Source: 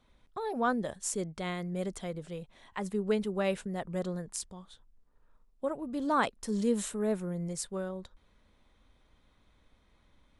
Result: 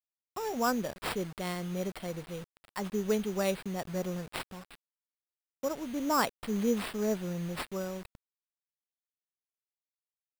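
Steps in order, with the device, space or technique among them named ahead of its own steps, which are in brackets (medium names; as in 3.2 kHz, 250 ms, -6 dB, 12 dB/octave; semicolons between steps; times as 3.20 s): early 8-bit sampler (sample-rate reducer 6.4 kHz, jitter 0%; bit crusher 8-bit)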